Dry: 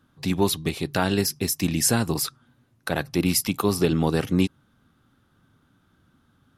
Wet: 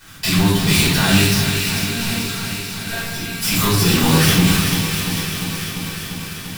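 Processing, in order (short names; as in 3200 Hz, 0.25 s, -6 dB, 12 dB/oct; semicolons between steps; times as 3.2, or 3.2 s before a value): zero-crossing step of -24 dBFS; gate with hold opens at -25 dBFS; passive tone stack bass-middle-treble 5-5-5; negative-ratio compressor -36 dBFS, ratio -0.5; 1.37–3.37 resonator 230 Hz, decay 0.28 s, harmonics all, mix 90%; thin delay 0.441 s, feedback 61%, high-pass 1800 Hz, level -5.5 dB; shoebox room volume 220 m³, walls mixed, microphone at 4.8 m; lo-fi delay 0.346 s, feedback 80%, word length 8-bit, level -10 dB; gain +6.5 dB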